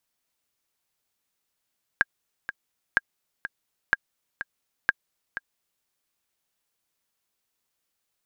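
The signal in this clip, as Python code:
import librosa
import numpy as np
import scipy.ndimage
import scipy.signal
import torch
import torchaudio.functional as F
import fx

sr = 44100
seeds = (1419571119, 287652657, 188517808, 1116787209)

y = fx.click_track(sr, bpm=125, beats=2, bars=4, hz=1620.0, accent_db=12.0, level_db=-6.0)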